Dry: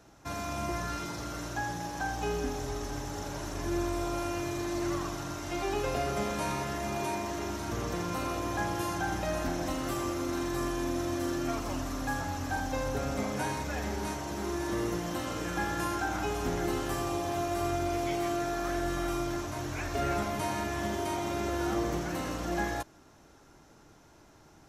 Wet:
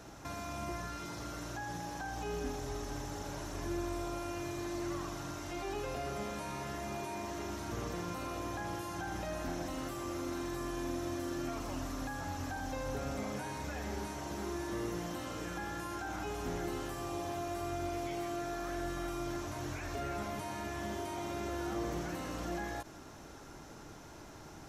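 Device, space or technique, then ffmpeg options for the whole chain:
de-esser from a sidechain: -filter_complex "[0:a]asplit=2[a][b];[b]highpass=f=4.7k:p=1,apad=whole_len=1088537[c];[a][c]sidechaincompress=threshold=-58dB:ratio=5:attack=2.5:release=35,volume=6.5dB"

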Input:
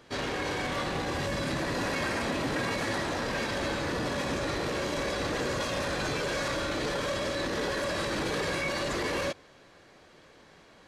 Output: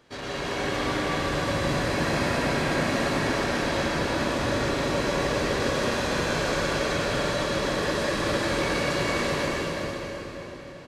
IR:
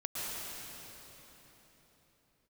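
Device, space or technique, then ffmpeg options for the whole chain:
cave: -filter_complex "[0:a]aecho=1:1:373:0.376[a];[1:a]atrim=start_sample=2205[b];[a][b]afir=irnorm=-1:irlink=0"

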